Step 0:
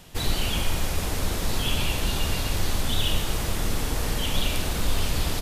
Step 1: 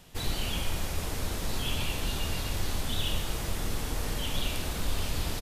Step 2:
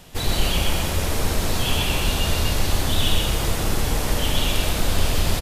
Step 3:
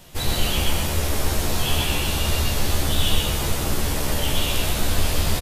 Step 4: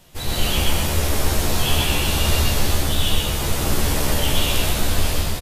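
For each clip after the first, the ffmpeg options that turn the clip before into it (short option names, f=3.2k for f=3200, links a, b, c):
-filter_complex "[0:a]asplit=2[a][b];[b]adelay=24,volume=-12dB[c];[a][c]amix=inputs=2:normalize=0,volume=-6dB"
-filter_complex "[0:a]equalizer=f=610:w=1.5:g=2,asplit=2[a][b];[b]aecho=0:1:128.3|253.6:0.708|0.251[c];[a][c]amix=inputs=2:normalize=0,volume=8dB"
-filter_complex "[0:a]highshelf=f=10k:g=4.5,asplit=2[a][b];[b]adelay=14,volume=-3dB[c];[a][c]amix=inputs=2:normalize=0,volume=-2.5dB"
-af "dynaudnorm=f=130:g=5:m=15.5dB,volume=-4.5dB" -ar 48000 -c:a libmp3lame -b:a 256k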